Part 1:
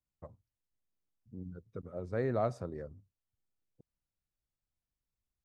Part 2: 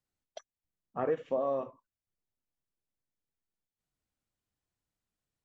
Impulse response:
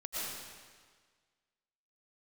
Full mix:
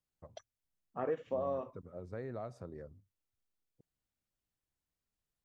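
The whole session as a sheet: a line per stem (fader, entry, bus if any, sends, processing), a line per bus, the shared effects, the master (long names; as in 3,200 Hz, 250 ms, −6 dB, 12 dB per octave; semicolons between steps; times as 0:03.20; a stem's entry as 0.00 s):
−5.0 dB, 0.00 s, no send, downward compressor 4 to 1, threshold −34 dBFS, peak gain reduction 7.5 dB
−4.5 dB, 0.00 s, no send, no processing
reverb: not used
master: no processing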